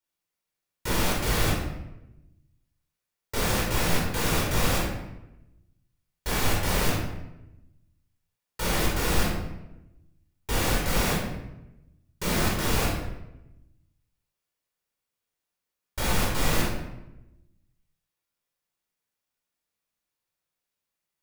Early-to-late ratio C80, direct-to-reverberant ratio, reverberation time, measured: 4.5 dB, −4.5 dB, 0.95 s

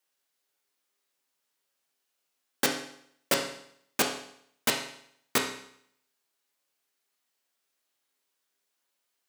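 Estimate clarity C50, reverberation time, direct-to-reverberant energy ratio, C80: 6.5 dB, 0.70 s, 1.5 dB, 10.0 dB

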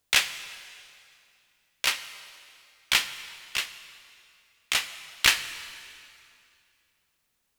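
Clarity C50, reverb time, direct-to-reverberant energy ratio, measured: 12.5 dB, 2.5 s, 11.5 dB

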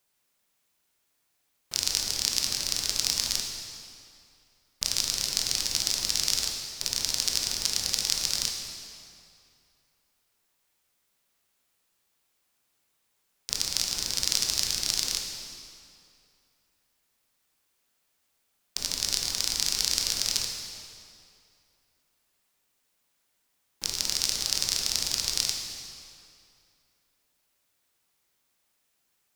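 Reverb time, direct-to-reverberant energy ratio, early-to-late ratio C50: 2.5 s, 1.5 dB, 3.0 dB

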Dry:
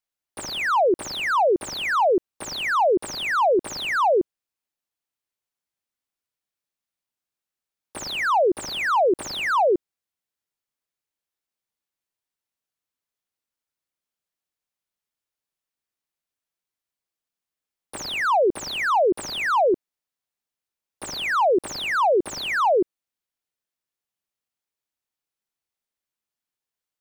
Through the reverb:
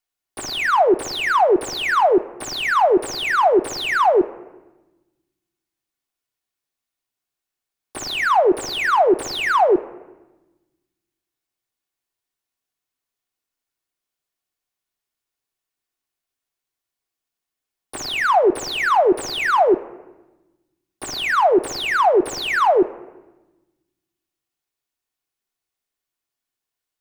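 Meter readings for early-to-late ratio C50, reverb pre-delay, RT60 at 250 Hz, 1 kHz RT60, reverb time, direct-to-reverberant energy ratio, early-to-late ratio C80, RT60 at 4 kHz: 17.0 dB, 3 ms, 1.6 s, 1.0 s, 1.1 s, 7.0 dB, 18.5 dB, 0.60 s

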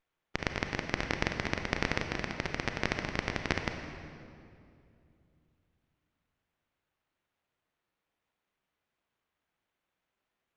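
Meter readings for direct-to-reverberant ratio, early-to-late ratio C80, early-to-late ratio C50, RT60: 5.0 dB, 7.0 dB, 6.0 dB, 2.5 s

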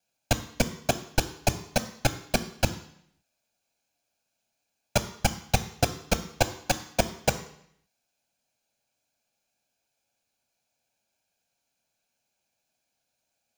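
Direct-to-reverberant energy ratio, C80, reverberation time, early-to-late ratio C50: 11.0 dB, 17.0 dB, 0.70 s, 14.5 dB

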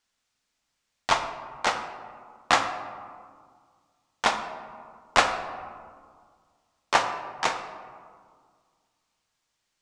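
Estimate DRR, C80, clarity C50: 5.5 dB, 9.5 dB, 8.0 dB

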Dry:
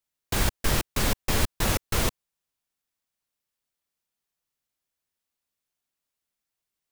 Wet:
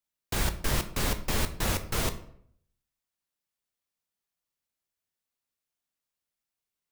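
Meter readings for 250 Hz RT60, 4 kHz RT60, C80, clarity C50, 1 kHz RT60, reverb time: 0.70 s, 0.45 s, 16.5 dB, 13.0 dB, 0.60 s, 0.65 s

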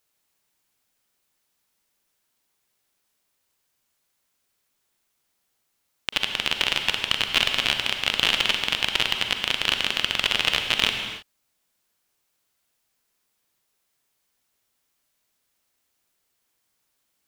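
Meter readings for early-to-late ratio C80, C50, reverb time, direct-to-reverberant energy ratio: 6.5 dB, 5.5 dB, non-exponential decay, 5.0 dB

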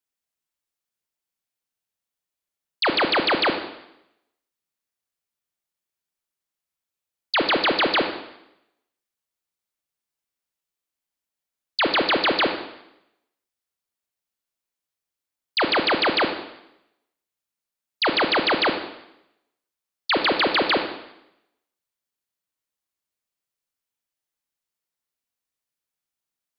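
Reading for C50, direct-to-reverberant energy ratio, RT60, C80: 7.0 dB, 5.0 dB, 0.85 s, 9.5 dB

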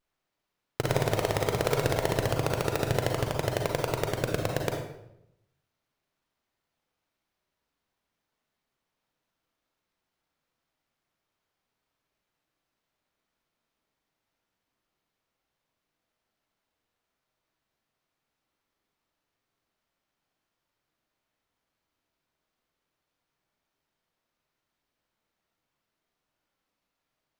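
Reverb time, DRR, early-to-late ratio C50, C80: 0.80 s, 1.5 dB, 4.0 dB, 7.0 dB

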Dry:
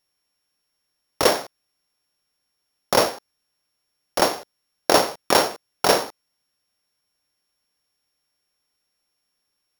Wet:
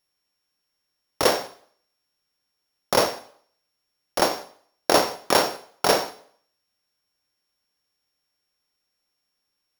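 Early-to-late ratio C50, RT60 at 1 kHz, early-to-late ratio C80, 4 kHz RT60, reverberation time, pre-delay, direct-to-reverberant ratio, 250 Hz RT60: 15.0 dB, 0.60 s, 18.0 dB, 0.55 s, 0.60 s, 20 ms, 11.5 dB, 0.60 s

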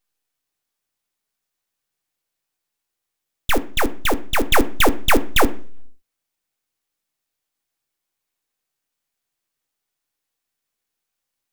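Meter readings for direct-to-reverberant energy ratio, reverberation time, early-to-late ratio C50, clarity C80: 8.0 dB, 0.45 s, 19.0 dB, 23.5 dB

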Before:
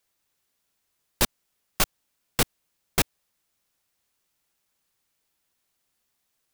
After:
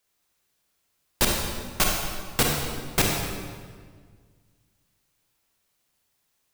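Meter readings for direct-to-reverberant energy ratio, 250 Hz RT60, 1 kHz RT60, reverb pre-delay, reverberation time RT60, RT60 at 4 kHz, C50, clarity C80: −1.0 dB, 2.1 s, 1.6 s, 30 ms, 1.7 s, 1.3 s, 0.5 dB, 3.0 dB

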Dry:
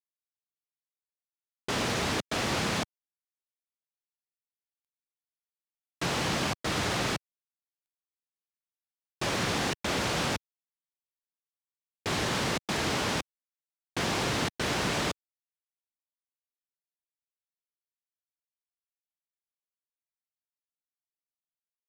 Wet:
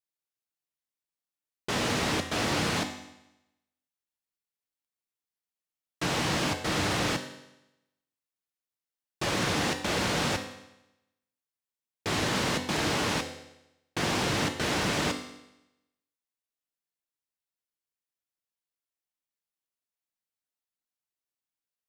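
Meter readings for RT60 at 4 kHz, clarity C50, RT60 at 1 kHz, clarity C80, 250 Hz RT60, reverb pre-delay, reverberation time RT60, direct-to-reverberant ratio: 0.90 s, 9.0 dB, 0.90 s, 11.0 dB, 0.90 s, 4 ms, 0.90 s, 5.0 dB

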